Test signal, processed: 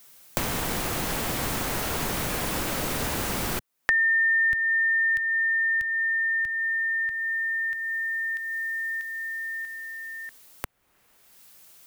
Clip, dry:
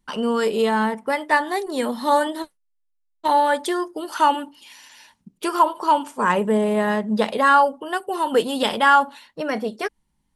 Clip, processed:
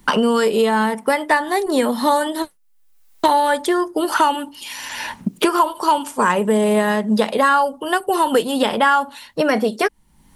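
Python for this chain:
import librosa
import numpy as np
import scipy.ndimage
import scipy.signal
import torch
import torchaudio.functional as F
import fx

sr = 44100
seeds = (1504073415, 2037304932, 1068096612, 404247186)

y = fx.high_shelf(x, sr, hz=8800.0, db=7.5)
y = fx.band_squash(y, sr, depth_pct=100)
y = F.gain(torch.from_numpy(y), 2.5).numpy()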